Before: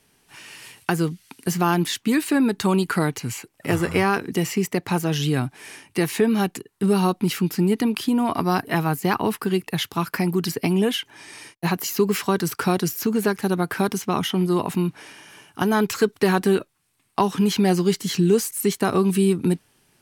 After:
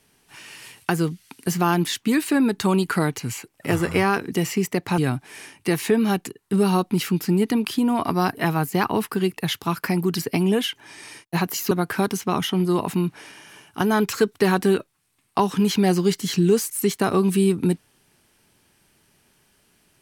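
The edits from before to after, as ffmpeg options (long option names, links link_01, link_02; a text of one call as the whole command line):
ffmpeg -i in.wav -filter_complex "[0:a]asplit=3[link_01][link_02][link_03];[link_01]atrim=end=4.982[link_04];[link_02]atrim=start=5.278:end=12.012[link_05];[link_03]atrim=start=13.518[link_06];[link_04][link_05]acrossfade=duration=0.004:curve1=hsin:curve2=hsin[link_07];[link_07][link_06]acrossfade=duration=0.004:curve1=hsin:curve2=hsin" out.wav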